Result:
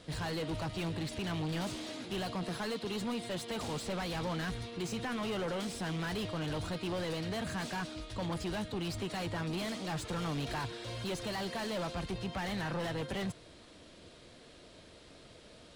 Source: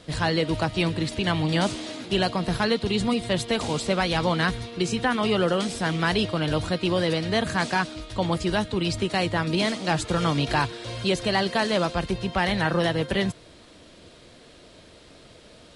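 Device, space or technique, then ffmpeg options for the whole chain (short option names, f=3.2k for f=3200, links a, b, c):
saturation between pre-emphasis and de-emphasis: -filter_complex "[0:a]asettb=1/sr,asplit=3[a][b][c];[a]atrim=end=2.434[d];[b]atrim=start=2.43:end=3.51,asetpts=PTS-STARTPTS,afade=t=in:d=0.004:c=qsin,afade=t=out:st=1.076:d=0.004:c=qsin,highpass=180[e];[c]atrim=start=3.506[f];[d][e]acrossfade=d=0.004:c1=hsin:c2=qsin[g];[g][f]acrossfade=d=0.004:c1=qsin:c2=hsin,highshelf=f=2.3k:g=10,asoftclip=type=tanh:threshold=-26dB,highshelf=f=2.3k:g=-10,volume=-5.5dB"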